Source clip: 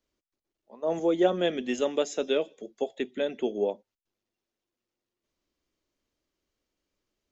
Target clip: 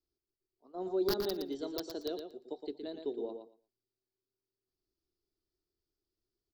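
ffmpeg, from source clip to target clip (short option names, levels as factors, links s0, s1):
-af "aeval=exprs='(mod(5.62*val(0)+1,2)-1)/5.62':c=same,firequalizer=gain_entry='entry(110,0);entry(210,-7);entry(330,3);entry(460,-13);entry(670,-11);entry(1300,-10);entry(2000,-22);entry(4200,2);entry(7300,-26);entry(11000,-3)':delay=0.05:min_phase=1,asetrate=49392,aresample=44100,aecho=1:1:116|232|348:0.447|0.0715|0.0114,volume=0.562"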